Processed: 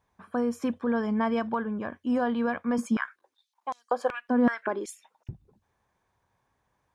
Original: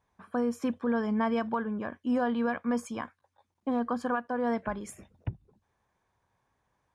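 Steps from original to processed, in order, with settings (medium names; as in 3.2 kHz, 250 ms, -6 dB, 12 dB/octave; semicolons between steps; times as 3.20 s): 2.78–5.29 s: step-sequenced high-pass 5.3 Hz 220–6200 Hz; trim +1.5 dB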